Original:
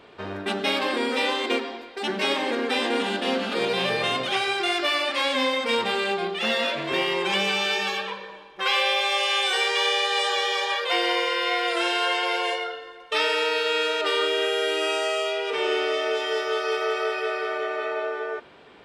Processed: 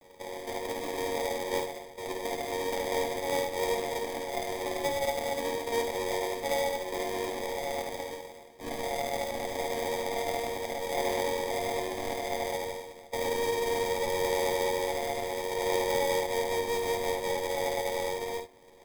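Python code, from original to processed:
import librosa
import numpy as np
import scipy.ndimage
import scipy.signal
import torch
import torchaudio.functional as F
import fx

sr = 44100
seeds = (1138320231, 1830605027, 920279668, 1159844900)

y = fx.chord_vocoder(x, sr, chord='major triad', root=54)
y = scipy.signal.sosfilt(scipy.signal.butter(6, 420.0, 'highpass', fs=sr, output='sos'), y)
y = fx.tilt_eq(y, sr, slope=-4.5)
y = fx.notch(y, sr, hz=990.0, q=5.7)
y = fx.sample_hold(y, sr, seeds[0], rate_hz=1400.0, jitter_pct=0)
y = fx.vibrato(y, sr, rate_hz=9.7, depth_cents=20.0)
y = fx.quant_companded(y, sr, bits=4)
y = fx.room_early_taps(y, sr, ms=(54, 67), db=(-7.5, -11.0))
y = y * librosa.db_to_amplitude(-8.0)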